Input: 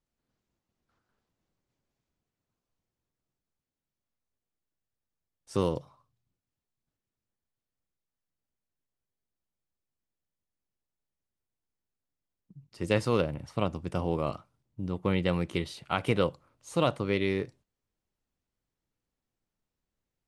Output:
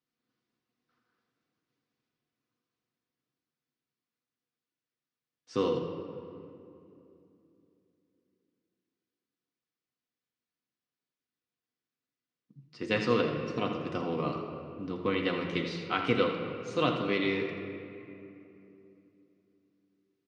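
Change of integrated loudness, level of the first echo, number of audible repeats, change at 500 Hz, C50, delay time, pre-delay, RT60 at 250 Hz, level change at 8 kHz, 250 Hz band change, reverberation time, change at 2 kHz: -1.0 dB, -9.5 dB, 1, -0.5 dB, 4.0 dB, 82 ms, 4 ms, 4.0 s, no reading, -0.5 dB, 2.8 s, +2.5 dB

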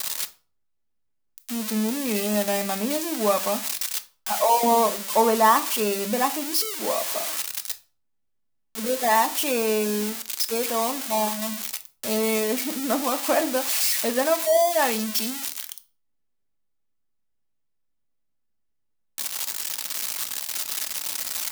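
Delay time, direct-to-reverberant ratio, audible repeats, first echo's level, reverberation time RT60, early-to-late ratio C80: no echo, 7.5 dB, no echo, no echo, 0.40 s, 22.5 dB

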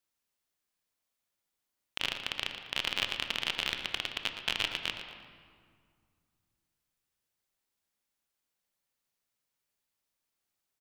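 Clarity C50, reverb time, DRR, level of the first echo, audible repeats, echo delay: 5.5 dB, 2.0 s, 5.0 dB, -11.0 dB, 2, 116 ms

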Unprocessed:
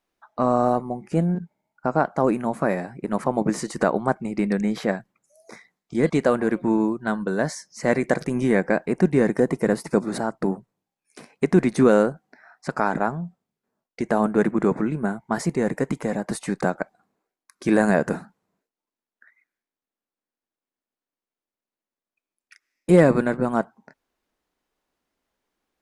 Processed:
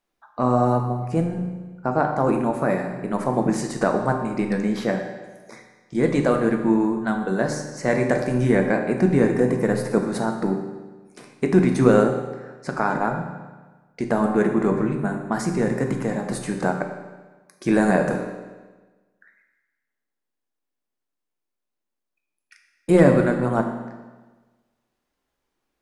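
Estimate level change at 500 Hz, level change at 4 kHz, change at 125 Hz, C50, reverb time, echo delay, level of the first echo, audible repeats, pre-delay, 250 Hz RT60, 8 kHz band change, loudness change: +0.5 dB, +0.5 dB, +3.0 dB, 6.0 dB, 1.3 s, no echo, no echo, no echo, 7 ms, 1.3 s, +0.5 dB, +1.0 dB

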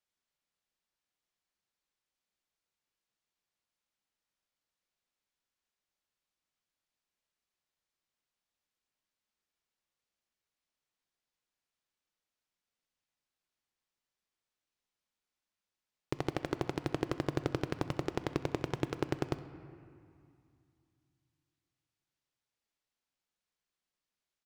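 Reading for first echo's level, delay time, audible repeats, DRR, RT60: -21.0 dB, 65 ms, 1, 11.0 dB, 2.4 s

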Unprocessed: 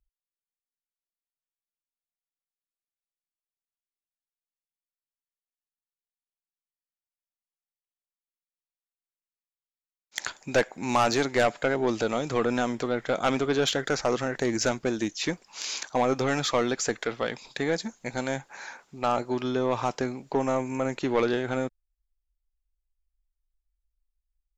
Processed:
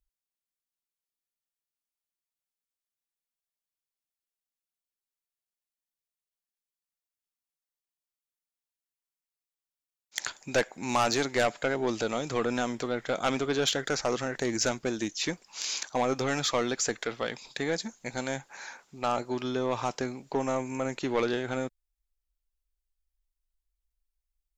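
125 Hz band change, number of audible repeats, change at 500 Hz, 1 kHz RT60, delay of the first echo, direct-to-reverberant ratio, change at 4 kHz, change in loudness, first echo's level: -3.5 dB, no echo, -3.5 dB, no reverb, no echo, no reverb, 0.0 dB, -2.5 dB, no echo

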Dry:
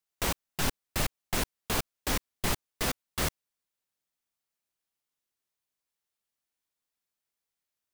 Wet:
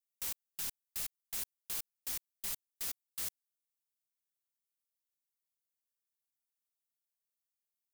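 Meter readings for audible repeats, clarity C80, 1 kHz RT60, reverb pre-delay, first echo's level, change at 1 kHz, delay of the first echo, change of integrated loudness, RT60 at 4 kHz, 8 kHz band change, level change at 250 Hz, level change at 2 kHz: no echo, no reverb, no reverb, no reverb, no echo, -21.5 dB, no echo, -7.0 dB, no reverb, -6.0 dB, -25.5 dB, -17.0 dB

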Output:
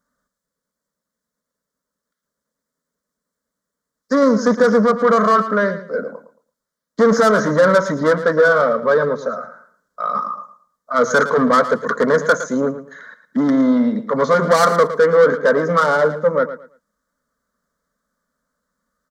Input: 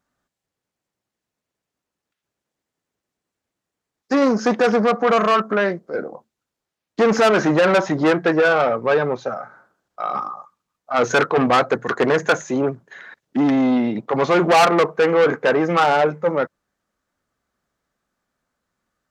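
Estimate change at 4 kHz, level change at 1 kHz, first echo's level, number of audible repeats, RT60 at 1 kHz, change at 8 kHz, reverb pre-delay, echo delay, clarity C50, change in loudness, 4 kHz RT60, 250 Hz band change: -3.5 dB, +1.0 dB, -12.5 dB, 2, no reverb, +2.5 dB, no reverb, 112 ms, no reverb, +2.0 dB, no reverb, +1.5 dB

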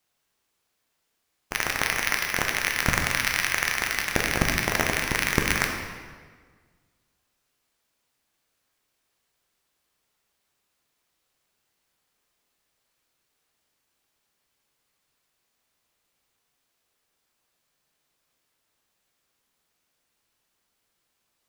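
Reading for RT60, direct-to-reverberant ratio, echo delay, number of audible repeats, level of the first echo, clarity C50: 1.6 s, 1.5 dB, no echo, no echo, no echo, 4.0 dB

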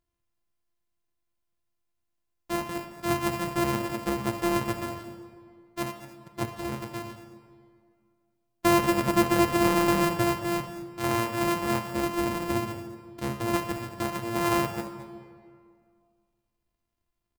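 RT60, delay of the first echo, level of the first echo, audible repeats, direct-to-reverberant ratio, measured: 2.1 s, 221 ms, -13.5 dB, 1, 6.5 dB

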